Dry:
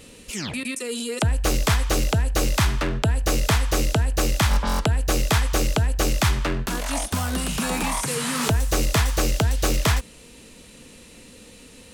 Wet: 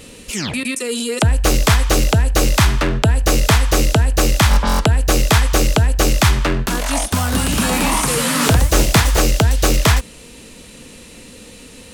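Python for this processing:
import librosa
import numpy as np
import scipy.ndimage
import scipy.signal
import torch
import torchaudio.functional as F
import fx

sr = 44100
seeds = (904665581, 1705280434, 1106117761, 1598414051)

y = fx.echo_pitch(x, sr, ms=205, semitones=2, count=2, db_per_echo=-6.0, at=(7.08, 9.22))
y = F.gain(torch.from_numpy(y), 7.0).numpy()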